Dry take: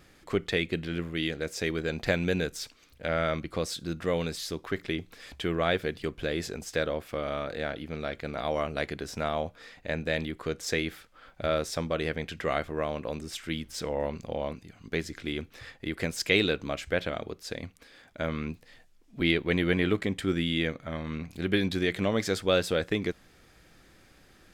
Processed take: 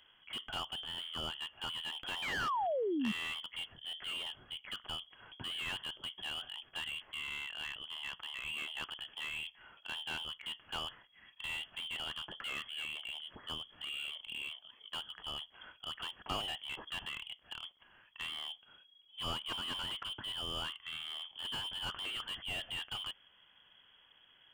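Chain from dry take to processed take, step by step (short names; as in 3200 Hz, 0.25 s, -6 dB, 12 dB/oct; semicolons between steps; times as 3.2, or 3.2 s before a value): inverted band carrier 3300 Hz; painted sound fall, 2.22–3.12, 200–2500 Hz -26 dBFS; slew limiter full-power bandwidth 82 Hz; gain -7.5 dB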